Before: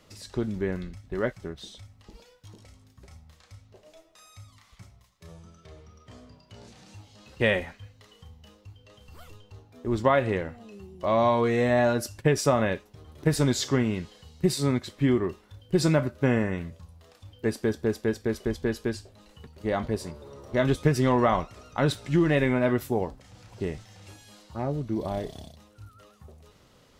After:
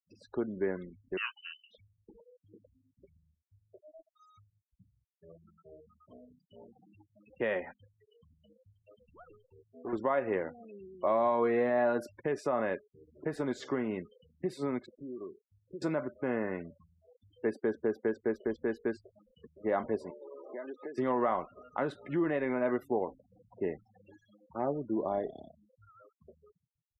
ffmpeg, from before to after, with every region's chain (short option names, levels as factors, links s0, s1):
-filter_complex "[0:a]asettb=1/sr,asplit=3[s0][s1][s2];[s0]atrim=end=1.174[s3];[s1]atrim=start=1.17:end=1.71,asetpts=PTS-STARTPTS,afade=t=in:d=0.004:c=qsin,afade=t=out:st=0.536:d=0.004:c=qsin,highpass=64,acompressor=mode=upward:threshold=0.0141:ratio=2.5:attack=3.2:release=140:knee=2.83:detection=peak,lowpass=f=2600:t=q:w=0.5098,lowpass=f=2600:t=q:w=0.6013,lowpass=f=2600:t=q:w=0.9,lowpass=f=2600:t=q:w=2.563,afreqshift=-3100[s4];[s2]atrim=start=1.706[s5];[s3][s4]acrossfade=d=0.004:c1=hsin:c2=qsin[s6];[s6][s5]acrossfade=d=0.004:c1=qsin:c2=hsin,asettb=1/sr,asplit=3[s7][s8][s9];[s7]atrim=end=7.744[s10];[s8]atrim=start=7.74:end=9.93,asetpts=PTS-STARTPTS,afade=t=in:d=0.004:c=qsin,afade=t=out:st=2.186:d=0.004:c=qsin,aemphasis=mode=reproduction:type=50fm,asoftclip=type=hard:threshold=0.0237[s11];[s9]atrim=start=9.926[s12];[s10][s11]acrossfade=d=0.004:c1=hsin:c2=qsin[s13];[s13][s12]acrossfade=d=0.004:c1=qsin:c2=hsin,asettb=1/sr,asplit=3[s14][s15][s16];[s14]atrim=end=14.864[s17];[s15]atrim=start=14.86:end=15.82,asetpts=PTS-STARTPTS,afade=t=in:d=0.004:c=qsin,afade=t=out:st=0.956:d=0.004:c=qsin,lowpass=f=1200:w=0.5412,lowpass=f=1200:w=1.3066,equalizer=f=84:t=o:w=1.4:g=-4.5,acompressor=threshold=0.0112:ratio=4:attack=3.2:release=140:knee=1:detection=peak[s18];[s16]atrim=start=15.816[s19];[s17][s18]acrossfade=d=0.004:c1=hsin:c2=qsin[s20];[s20][s19]acrossfade=d=0.004:c1=qsin:c2=hsin,asettb=1/sr,asplit=3[s21][s22][s23];[s21]atrim=end=20.104[s24];[s22]atrim=start=20.1:end=20.98,asetpts=PTS-STARTPTS,afade=t=in:d=0.004:c=qsin,afade=t=out:st=0.876:d=0.004:c=qsin,highpass=f=270:w=0.5412,highpass=f=270:w=1.3066,acompressor=threshold=0.0126:ratio=5:attack=3.2:release=140:knee=1:detection=peak[s25];[s23]atrim=start=20.976[s26];[s24][s25]acrossfade=d=0.004:c1=hsin:c2=qsin[s27];[s27][s26]acrossfade=d=0.004:c1=qsin:c2=hsin,afftfilt=real='re*gte(hypot(re,im),0.00891)':imag='im*gte(hypot(re,im),0.00891)':win_size=1024:overlap=0.75,alimiter=limit=0.119:level=0:latency=1:release=247,acrossover=split=230 2100:gain=0.1 1 0.112[s28][s29][s30];[s28][s29][s30]amix=inputs=3:normalize=0"